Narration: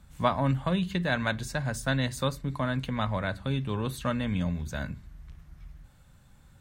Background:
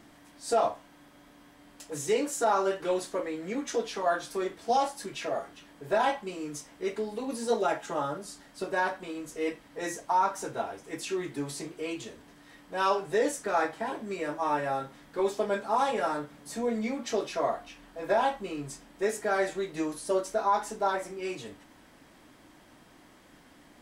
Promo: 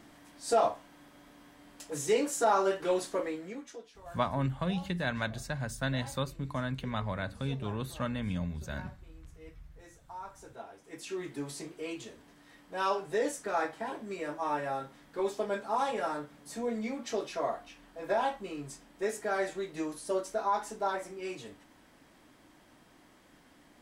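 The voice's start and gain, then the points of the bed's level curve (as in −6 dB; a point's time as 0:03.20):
3.95 s, −5.0 dB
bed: 0:03.29 −0.5 dB
0:03.92 −21.5 dB
0:09.98 −21.5 dB
0:11.27 −4 dB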